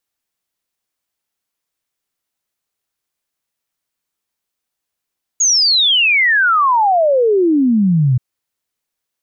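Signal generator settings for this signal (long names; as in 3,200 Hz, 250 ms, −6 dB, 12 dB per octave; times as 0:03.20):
exponential sine sweep 6,800 Hz → 120 Hz 2.78 s −9.5 dBFS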